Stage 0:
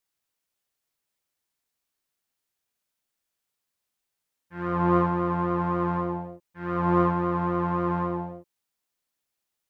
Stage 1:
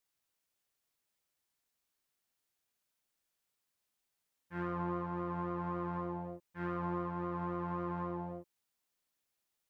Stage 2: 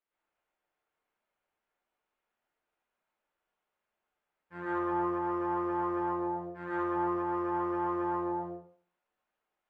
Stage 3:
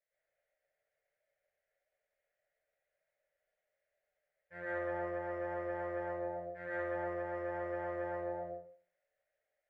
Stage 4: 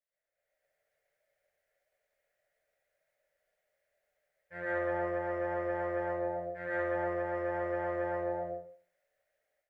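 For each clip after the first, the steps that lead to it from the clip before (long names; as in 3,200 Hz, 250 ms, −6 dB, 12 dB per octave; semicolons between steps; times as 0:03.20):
downward compressor 6 to 1, threshold −33 dBFS, peak gain reduction 15.5 dB; level −2 dB
running median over 9 samples; bass and treble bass −8 dB, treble −12 dB; convolution reverb RT60 0.45 s, pre-delay 103 ms, DRR −7 dB; level −1 dB
drawn EQ curve 150 Hz 0 dB, 250 Hz −25 dB, 590 Hz +13 dB, 1,000 Hz −18 dB, 1,900 Hz +8 dB, 2,700 Hz −4 dB; level −2.5 dB
automatic gain control gain up to 11.5 dB; level −6.5 dB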